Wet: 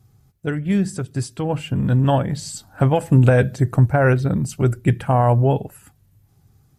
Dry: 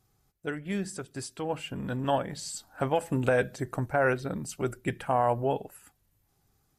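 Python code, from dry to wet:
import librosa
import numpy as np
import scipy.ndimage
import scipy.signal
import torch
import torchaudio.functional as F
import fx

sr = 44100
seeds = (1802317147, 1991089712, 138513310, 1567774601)

y = fx.peak_eq(x, sr, hz=110.0, db=14.5, octaves=2.0)
y = y * 10.0 ** (5.5 / 20.0)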